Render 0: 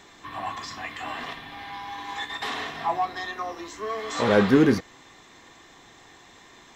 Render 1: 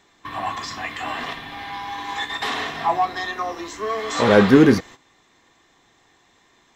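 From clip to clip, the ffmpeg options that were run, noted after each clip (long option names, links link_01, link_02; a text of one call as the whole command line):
ffmpeg -i in.wav -af "agate=range=-13dB:threshold=-43dB:ratio=16:detection=peak,volume=5.5dB" out.wav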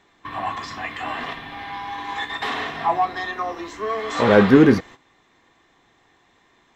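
ffmpeg -i in.wav -af "bass=frequency=250:gain=0,treble=frequency=4000:gain=-8" out.wav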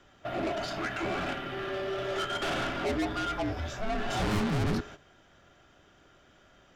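ffmpeg -i in.wav -af "aeval=exprs='(tanh(22.4*val(0)+0.2)-tanh(0.2))/22.4':channel_layout=same,afreqshift=-420" out.wav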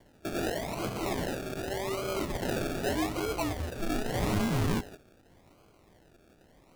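ffmpeg -i in.wav -af "acrusher=samples=34:mix=1:aa=0.000001:lfo=1:lforange=20.4:lforate=0.84" out.wav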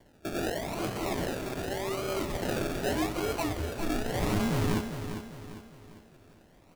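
ffmpeg -i in.wav -af "aecho=1:1:400|800|1200|1600|2000:0.355|0.149|0.0626|0.0263|0.011" out.wav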